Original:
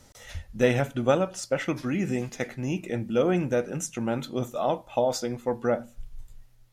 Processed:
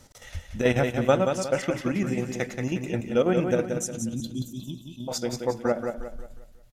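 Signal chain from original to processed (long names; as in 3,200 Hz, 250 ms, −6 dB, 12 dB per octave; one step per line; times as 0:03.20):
0:03.65–0:05.08: inverse Chebyshev band-stop filter 480–2,000 Hz, stop band 40 dB
square-wave tremolo 9.2 Hz, depth 60%, duty 65%
repeating echo 179 ms, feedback 38%, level −6 dB
level +1.5 dB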